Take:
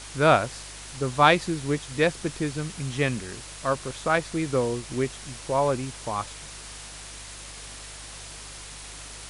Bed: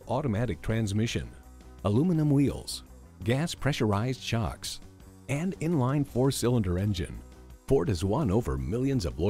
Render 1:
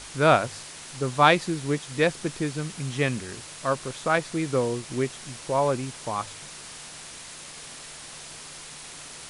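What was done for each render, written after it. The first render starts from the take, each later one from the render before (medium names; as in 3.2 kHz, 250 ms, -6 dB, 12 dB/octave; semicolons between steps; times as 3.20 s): de-hum 50 Hz, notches 2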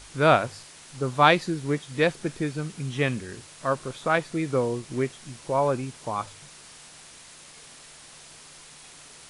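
noise print and reduce 6 dB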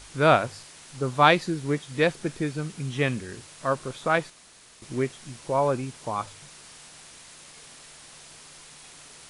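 4.30–4.82 s: room tone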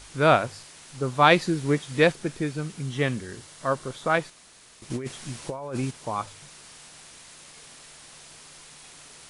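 1.31–2.12 s: gain +3 dB; 2.79–4.14 s: band-stop 2.5 kHz; 4.90–5.91 s: compressor with a negative ratio -31 dBFS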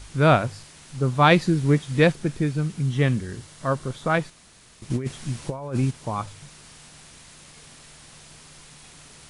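tone controls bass +9 dB, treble -1 dB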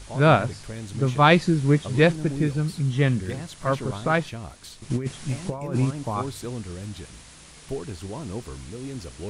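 add bed -7.5 dB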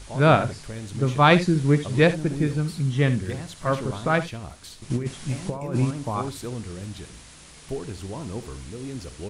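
early reflections 63 ms -16 dB, 74 ms -16 dB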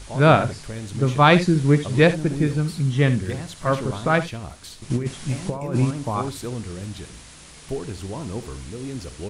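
trim +2.5 dB; peak limiter -3 dBFS, peak gain reduction 1.5 dB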